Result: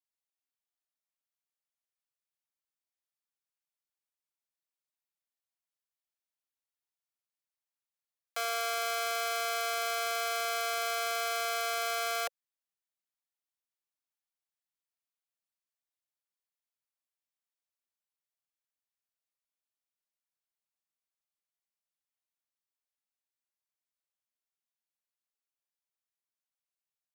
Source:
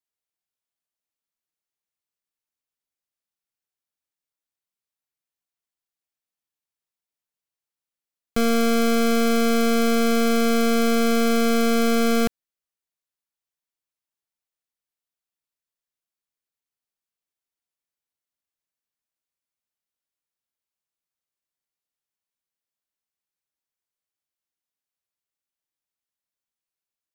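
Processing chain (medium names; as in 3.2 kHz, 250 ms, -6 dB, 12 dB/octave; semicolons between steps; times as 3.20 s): steep high-pass 530 Hz 72 dB/octave; trim -6 dB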